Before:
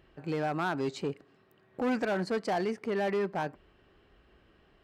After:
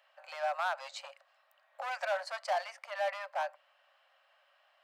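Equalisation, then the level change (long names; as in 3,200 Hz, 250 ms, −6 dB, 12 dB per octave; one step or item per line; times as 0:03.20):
Chebyshev high-pass filter 540 Hz, order 10
0.0 dB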